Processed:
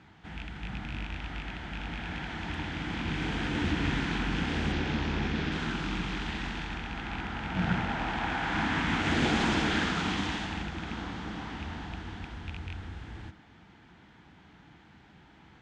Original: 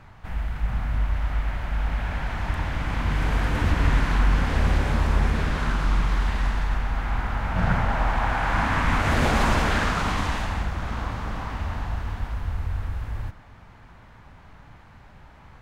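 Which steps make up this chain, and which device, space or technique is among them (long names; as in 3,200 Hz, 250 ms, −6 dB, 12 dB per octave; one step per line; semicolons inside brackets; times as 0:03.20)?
0:04.72–0:05.52: low-pass filter 6,500 Hz 24 dB per octave
car door speaker with a rattle (loose part that buzzes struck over −22 dBFS, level −25 dBFS; loudspeaker in its box 98–7,600 Hz, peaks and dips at 110 Hz −7 dB, 190 Hz +4 dB, 320 Hz +8 dB, 580 Hz −9 dB, 1,100 Hz −8 dB, 3,300 Hz +6 dB)
level −4 dB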